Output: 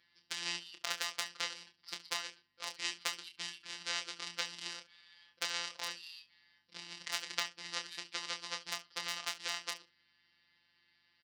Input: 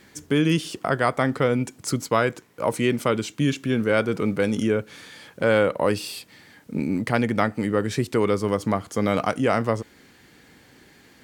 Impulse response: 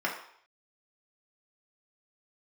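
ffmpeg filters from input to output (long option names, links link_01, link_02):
-af "lowpass=4200,bandreject=frequency=60:width_type=h:width=6,bandreject=frequency=120:width_type=h:width=6,bandreject=frequency=180:width_type=h:width=6,bandreject=frequency=240:width_type=h:width=6,bandreject=frequency=300:width_type=h:width=6,aresample=11025,acrusher=bits=3:mode=log:mix=0:aa=0.000001,aresample=44100,equalizer=frequency=110:width=6.7:gain=-11.5,acompressor=threshold=-21dB:ratio=16,asoftclip=type=hard:threshold=-12.5dB,afftfilt=real='hypot(re,im)*cos(PI*b)':imag='0':win_size=1024:overlap=0.75,aeval=exprs='val(0)+0.00316*(sin(2*PI*50*n/s)+sin(2*PI*2*50*n/s)/2+sin(2*PI*3*50*n/s)/3+sin(2*PI*4*50*n/s)/4+sin(2*PI*5*50*n/s)/5)':channel_layout=same,aeval=exprs='0.631*(cos(1*acos(clip(val(0)/0.631,-1,1)))-cos(1*PI/2))+0.00631*(cos(5*acos(clip(val(0)/0.631,-1,1)))-cos(5*PI/2))+0.0794*(cos(7*acos(clip(val(0)/0.631,-1,1)))-cos(7*PI/2))':channel_layout=same,aderivative,aecho=1:1:28|69:0.473|0.15,volume=11dB"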